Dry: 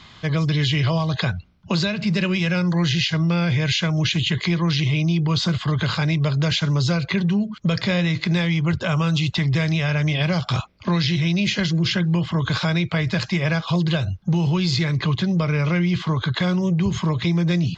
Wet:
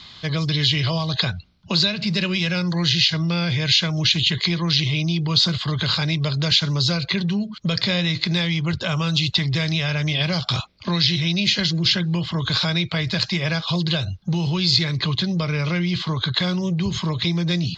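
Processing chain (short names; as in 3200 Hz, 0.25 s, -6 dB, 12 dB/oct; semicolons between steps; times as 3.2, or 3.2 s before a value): bell 4200 Hz +12 dB 0.91 oct; gain -2.5 dB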